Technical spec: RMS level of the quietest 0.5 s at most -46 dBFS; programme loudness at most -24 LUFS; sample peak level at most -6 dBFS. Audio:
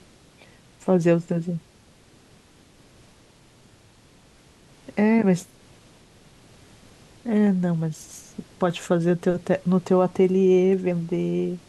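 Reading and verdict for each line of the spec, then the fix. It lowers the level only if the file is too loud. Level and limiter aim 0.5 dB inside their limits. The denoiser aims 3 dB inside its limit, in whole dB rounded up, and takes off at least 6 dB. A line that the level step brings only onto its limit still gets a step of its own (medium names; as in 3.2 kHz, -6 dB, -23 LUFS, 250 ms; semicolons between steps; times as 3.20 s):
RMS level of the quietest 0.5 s -54 dBFS: pass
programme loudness -22.5 LUFS: fail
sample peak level -8.0 dBFS: pass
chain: trim -2 dB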